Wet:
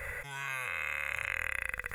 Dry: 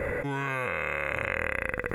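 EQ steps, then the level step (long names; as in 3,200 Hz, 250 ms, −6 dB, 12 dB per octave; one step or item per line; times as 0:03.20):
guitar amp tone stack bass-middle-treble 10-0-10
high-shelf EQ 4,700 Hz +7.5 dB
0.0 dB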